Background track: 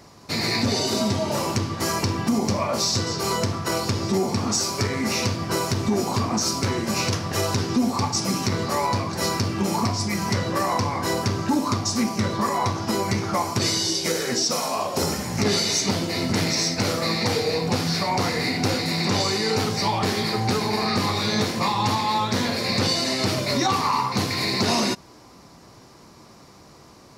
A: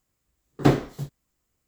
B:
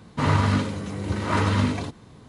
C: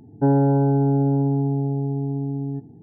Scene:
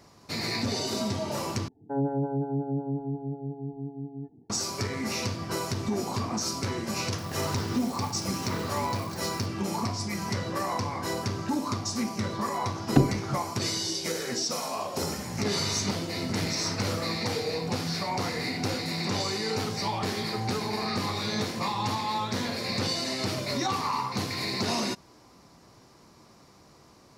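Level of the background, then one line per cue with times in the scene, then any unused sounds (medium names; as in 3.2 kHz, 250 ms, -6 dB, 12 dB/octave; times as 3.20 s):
background track -7 dB
1.68 s: replace with C -7.5 dB + lamp-driven phase shifter 5.5 Hz
7.18 s: add B -14.5 dB + zero-crossing glitches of -23 dBFS
12.31 s: add A -1.5 dB + low-pass that closes with the level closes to 350 Hz, closed at -15 dBFS
15.33 s: add B -15 dB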